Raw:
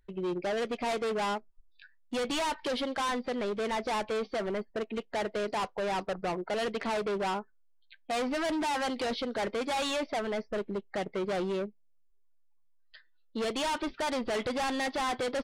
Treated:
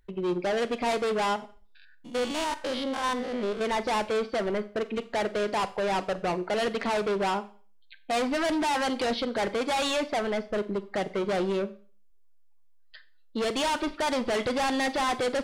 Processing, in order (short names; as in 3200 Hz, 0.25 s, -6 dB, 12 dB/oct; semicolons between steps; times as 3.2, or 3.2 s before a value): 1.36–3.61 stepped spectrum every 0.1 s; Schroeder reverb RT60 0.4 s, combs from 30 ms, DRR 14 dB; gain +4 dB